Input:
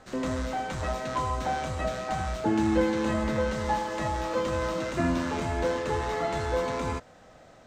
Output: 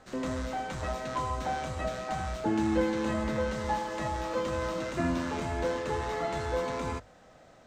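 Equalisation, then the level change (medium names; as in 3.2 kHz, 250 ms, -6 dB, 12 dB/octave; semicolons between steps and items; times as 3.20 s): hum notches 50/100 Hz; -3.0 dB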